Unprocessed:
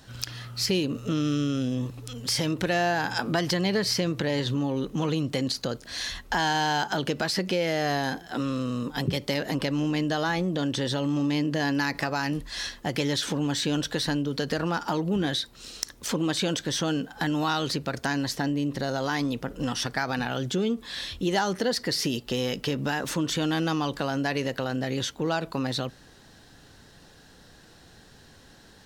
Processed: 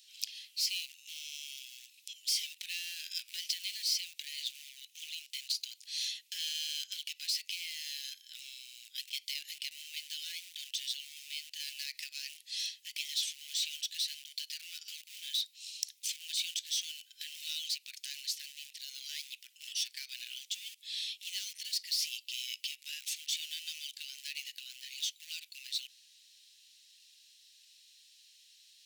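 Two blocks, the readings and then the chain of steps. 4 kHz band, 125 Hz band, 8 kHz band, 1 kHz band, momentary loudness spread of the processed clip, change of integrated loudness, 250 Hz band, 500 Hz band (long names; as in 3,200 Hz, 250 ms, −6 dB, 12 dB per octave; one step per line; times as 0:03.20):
−3.5 dB, below −40 dB, −3.0 dB, below −40 dB, 11 LU, −9.5 dB, below −40 dB, below −40 dB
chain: in parallel at −11 dB: wrap-around overflow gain 23.5 dB
on the sum: Butterworth high-pass 2,400 Hz 48 dB per octave
level −4.5 dB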